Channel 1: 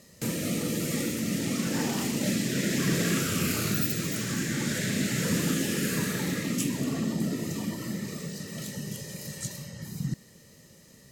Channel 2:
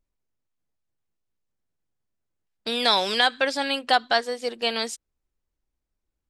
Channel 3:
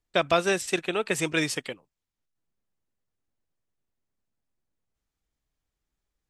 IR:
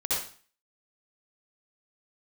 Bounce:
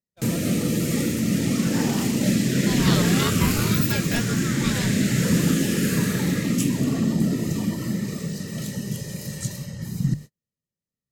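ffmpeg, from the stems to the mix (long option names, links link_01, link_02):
-filter_complex "[0:a]volume=3dB[link_01];[1:a]flanger=delay=22.5:depth=5:speed=2.1,aeval=exprs='val(0)*sin(2*PI*640*n/s+640*0.5/0.48*sin(2*PI*0.48*n/s))':channel_layout=same,volume=-2dB[link_02];[2:a]asoftclip=type=tanh:threshold=-15.5dB,volume=-18dB[link_03];[link_01][link_02][link_03]amix=inputs=3:normalize=0,bandreject=frequency=50:width_type=h:width=6,bandreject=frequency=100:width_type=h:width=6,bandreject=frequency=150:width_type=h:width=6,agate=range=-45dB:threshold=-39dB:ratio=16:detection=peak,lowshelf=frequency=200:gain=10"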